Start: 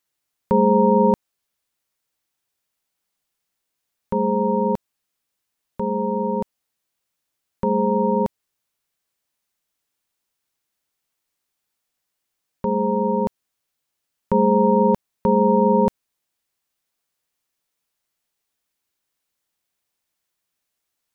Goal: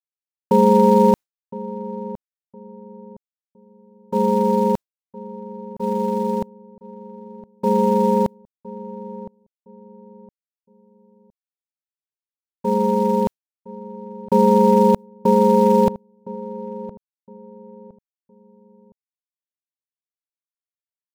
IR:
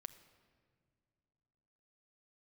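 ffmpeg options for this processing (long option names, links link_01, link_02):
-filter_complex "[0:a]agate=range=-33dB:threshold=-20dB:ratio=3:detection=peak,asplit=2[link_01][link_02];[link_02]acrusher=bits=3:mode=log:mix=0:aa=0.000001,volume=-10dB[link_03];[link_01][link_03]amix=inputs=2:normalize=0,asplit=2[link_04][link_05];[link_05]adelay=1013,lowpass=frequency=890:poles=1,volume=-15.5dB,asplit=2[link_06][link_07];[link_07]adelay=1013,lowpass=frequency=890:poles=1,volume=0.33,asplit=2[link_08][link_09];[link_09]adelay=1013,lowpass=frequency=890:poles=1,volume=0.33[link_10];[link_04][link_06][link_08][link_10]amix=inputs=4:normalize=0"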